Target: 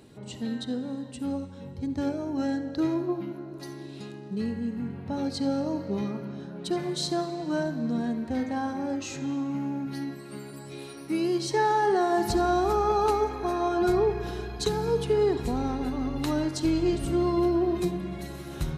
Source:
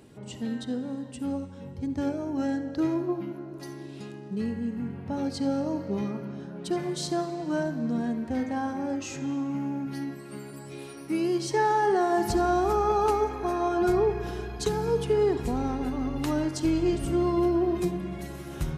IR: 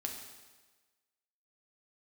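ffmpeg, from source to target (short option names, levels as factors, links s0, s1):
-af "equalizer=f=4000:w=6.7:g=7.5"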